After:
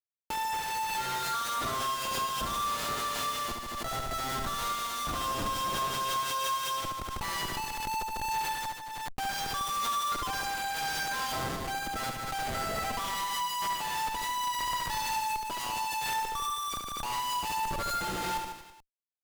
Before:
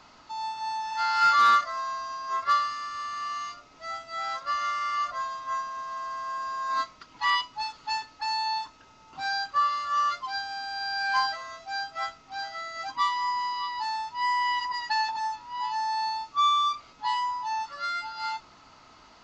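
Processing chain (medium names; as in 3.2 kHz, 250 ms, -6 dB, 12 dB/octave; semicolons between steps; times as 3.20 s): 3.46–5.94 s: treble shelf 2.9 kHz -6 dB; Schmitt trigger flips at -36.5 dBFS; vibrato 2.8 Hz 10 cents; reverse bouncing-ball echo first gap 70 ms, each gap 1.1×, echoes 5; swell ahead of each attack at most 23 dB/s; trim -5.5 dB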